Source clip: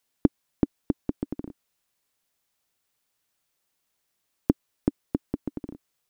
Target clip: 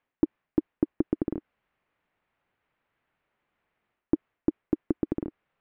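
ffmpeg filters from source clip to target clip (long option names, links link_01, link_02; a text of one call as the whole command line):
ffmpeg -i in.wav -af "lowpass=frequency=2200:width=0.5412,lowpass=frequency=2200:width=1.3066,areverse,acompressor=threshold=-28dB:ratio=6,areverse,asetrate=48000,aresample=44100,volume=7dB" out.wav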